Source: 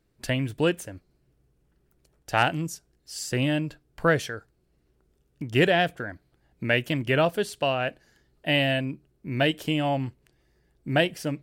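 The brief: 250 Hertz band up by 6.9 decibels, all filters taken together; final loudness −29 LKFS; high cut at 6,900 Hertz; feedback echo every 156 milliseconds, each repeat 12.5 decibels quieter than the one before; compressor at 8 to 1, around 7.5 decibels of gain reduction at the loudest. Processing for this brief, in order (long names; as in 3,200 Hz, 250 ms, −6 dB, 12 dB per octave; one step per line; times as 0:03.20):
low-pass filter 6,900 Hz
parametric band 250 Hz +9 dB
downward compressor 8 to 1, threshold −20 dBFS
repeating echo 156 ms, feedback 24%, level −12.5 dB
level −2 dB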